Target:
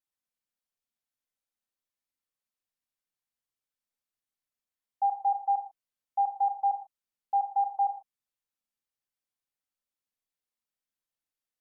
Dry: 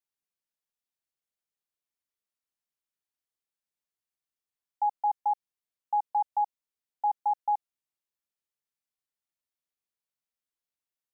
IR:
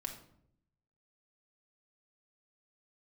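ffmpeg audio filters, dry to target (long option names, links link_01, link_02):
-filter_complex "[1:a]atrim=start_sample=2205,atrim=end_sample=6615[link_01];[0:a][link_01]afir=irnorm=-1:irlink=0,asetrate=42336,aresample=44100"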